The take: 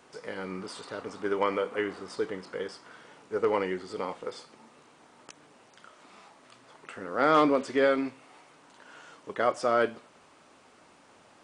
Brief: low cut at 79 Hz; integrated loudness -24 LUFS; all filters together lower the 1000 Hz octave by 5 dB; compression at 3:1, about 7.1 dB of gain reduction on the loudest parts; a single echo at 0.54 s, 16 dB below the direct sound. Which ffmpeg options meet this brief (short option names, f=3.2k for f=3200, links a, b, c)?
-af "highpass=79,equalizer=f=1k:t=o:g=-7,acompressor=threshold=-30dB:ratio=3,aecho=1:1:540:0.158,volume=12.5dB"